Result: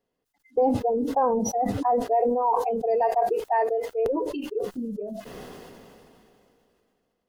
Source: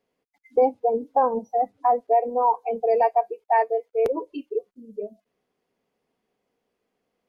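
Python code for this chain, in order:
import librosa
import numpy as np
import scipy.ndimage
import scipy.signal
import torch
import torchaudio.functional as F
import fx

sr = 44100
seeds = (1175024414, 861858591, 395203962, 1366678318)

y = fx.low_shelf(x, sr, hz=100.0, db=9.0)
y = fx.notch(y, sr, hz=2300.0, q=6.7)
y = fx.sustainer(y, sr, db_per_s=21.0)
y = y * 10.0 ** (-4.0 / 20.0)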